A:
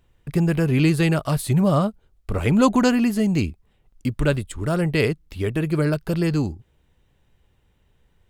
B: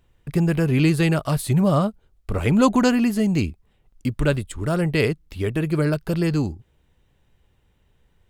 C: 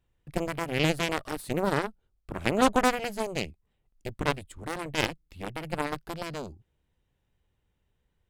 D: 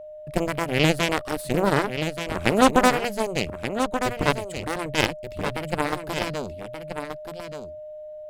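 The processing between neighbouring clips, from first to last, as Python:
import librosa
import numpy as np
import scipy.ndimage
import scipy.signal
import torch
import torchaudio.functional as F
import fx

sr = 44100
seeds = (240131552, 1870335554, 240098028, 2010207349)

y1 = x
y2 = fx.cheby_harmonics(y1, sr, harmonics=(4, 7), levels_db=(-12, -13), full_scale_db=-3.5)
y2 = fx.wow_flutter(y2, sr, seeds[0], rate_hz=2.1, depth_cents=24.0)
y2 = y2 * librosa.db_to_amplitude(-7.0)
y3 = y2 + 10.0 ** (-43.0 / 20.0) * np.sin(2.0 * np.pi * 610.0 * np.arange(len(y2)) / sr)
y3 = y3 + 10.0 ** (-8.0 / 20.0) * np.pad(y3, (int(1179 * sr / 1000.0), 0))[:len(y3)]
y3 = y3 * librosa.db_to_amplitude(5.5)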